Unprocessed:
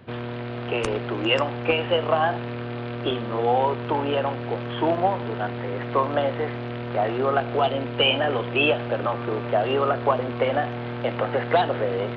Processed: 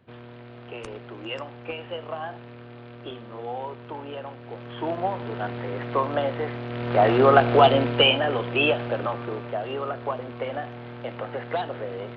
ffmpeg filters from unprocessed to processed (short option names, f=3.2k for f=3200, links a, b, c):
-af "volume=6.5dB,afade=t=in:st=4.42:d=1.08:silence=0.316228,afade=t=in:st=6.68:d=0.44:silence=0.375837,afade=t=out:st=7.74:d=0.45:silence=0.421697,afade=t=out:st=8.86:d=0.72:silence=0.446684"